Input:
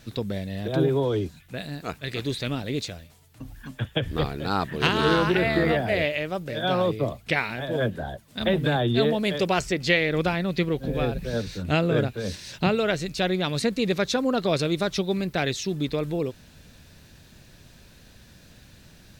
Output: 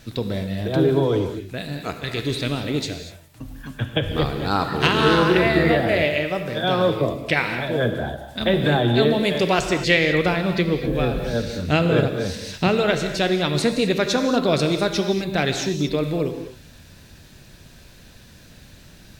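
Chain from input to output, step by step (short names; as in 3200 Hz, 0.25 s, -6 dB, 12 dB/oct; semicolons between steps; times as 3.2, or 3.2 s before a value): non-linear reverb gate 0.27 s flat, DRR 6 dB; gain +3.5 dB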